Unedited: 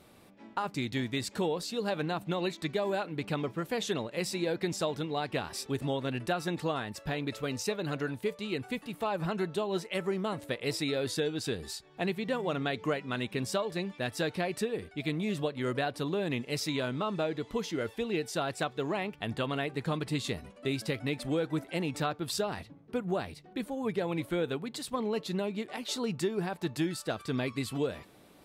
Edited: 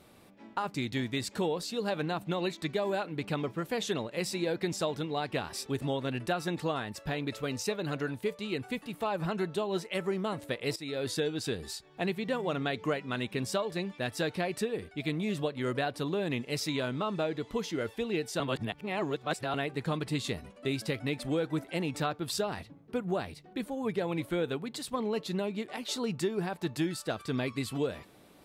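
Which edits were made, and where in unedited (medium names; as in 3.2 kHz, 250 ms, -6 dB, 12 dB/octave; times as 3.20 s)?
10.76–11.08 s: fade in, from -15 dB
18.40–19.54 s: reverse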